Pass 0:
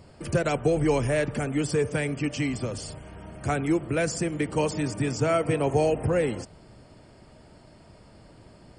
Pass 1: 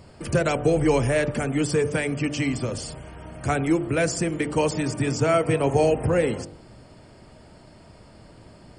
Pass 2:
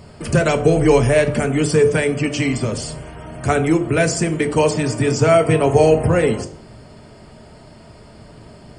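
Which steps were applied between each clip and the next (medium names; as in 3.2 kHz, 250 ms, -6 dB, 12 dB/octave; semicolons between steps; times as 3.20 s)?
de-hum 49.24 Hz, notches 17; trim +3.5 dB
reverberation RT60 0.40 s, pre-delay 4 ms, DRR 7.5 dB; trim +5.5 dB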